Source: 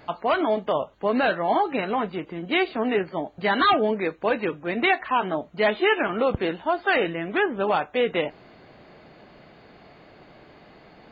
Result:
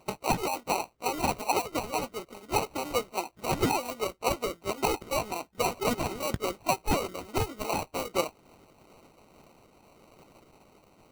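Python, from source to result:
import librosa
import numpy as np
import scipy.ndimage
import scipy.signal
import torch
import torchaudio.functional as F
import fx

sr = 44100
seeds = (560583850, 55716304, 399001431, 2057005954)

y = fx.pitch_glide(x, sr, semitones=4.0, runs='ending unshifted')
y = fx.sample_hold(y, sr, seeds[0], rate_hz=1700.0, jitter_pct=0)
y = fx.hpss(y, sr, part='harmonic', gain_db=-15)
y = y * librosa.db_to_amplitude(-1.5)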